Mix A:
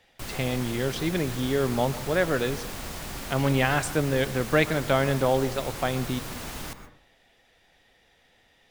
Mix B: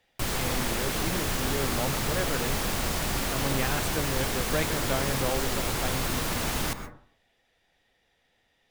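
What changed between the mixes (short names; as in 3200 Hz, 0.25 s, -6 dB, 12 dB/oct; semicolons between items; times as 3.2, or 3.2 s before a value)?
speech -8.0 dB; background +7.5 dB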